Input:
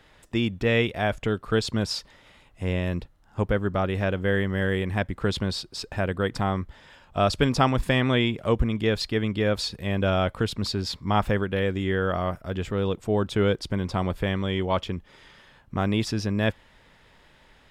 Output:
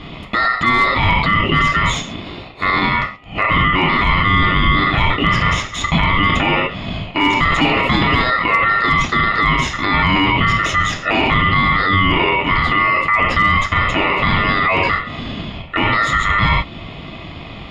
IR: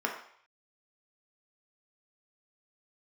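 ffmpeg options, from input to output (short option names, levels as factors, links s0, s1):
-filter_complex "[0:a]acrossover=split=280|5400[s0][s1][s2];[s1]aeval=exprs='0.531*sin(PI/2*2.51*val(0)/0.531)':c=same[s3];[s0][s3][s2]amix=inputs=3:normalize=0,bandreject=f=360.1:t=h:w=4,bandreject=f=720.2:t=h:w=4,bandreject=f=1080.3:t=h:w=4[s4];[1:a]atrim=start_sample=2205,afade=t=out:st=0.19:d=0.01,atrim=end_sample=8820[s5];[s4][s5]afir=irnorm=-1:irlink=0,asplit=2[s6][s7];[s7]acompressor=threshold=0.126:ratio=5,volume=0.794[s8];[s6][s8]amix=inputs=2:normalize=0,highpass=64,aeval=exprs='val(0)*sin(2*PI*1600*n/s)':c=same,volume=0.75,asoftclip=hard,volume=1.33,alimiter=limit=0.355:level=0:latency=1:release=19,bass=f=250:g=10,treble=f=4000:g=-9,volume=1.41"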